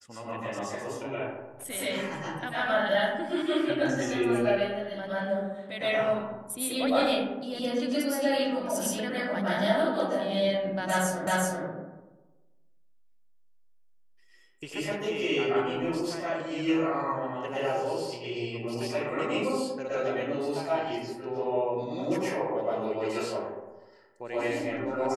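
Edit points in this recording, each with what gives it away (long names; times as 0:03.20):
0:11.27: the same again, the last 0.38 s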